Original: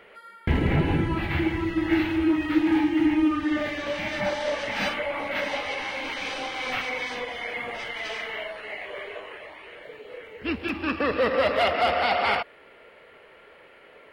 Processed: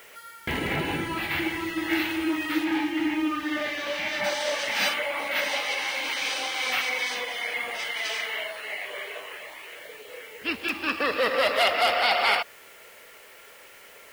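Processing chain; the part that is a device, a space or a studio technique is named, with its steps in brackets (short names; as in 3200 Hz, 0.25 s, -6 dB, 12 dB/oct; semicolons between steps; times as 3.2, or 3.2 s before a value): 2.64–4.24 air absorption 81 m; turntable without a phono preamp (RIAA curve recording; white noise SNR 26 dB)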